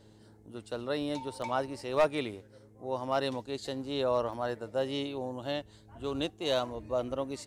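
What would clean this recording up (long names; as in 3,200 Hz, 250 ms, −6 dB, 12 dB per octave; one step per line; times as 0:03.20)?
clipped peaks rebuilt −18.5 dBFS
hum removal 106.8 Hz, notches 4
repair the gap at 0:01.42/0:04.33/0:05.99, 2.3 ms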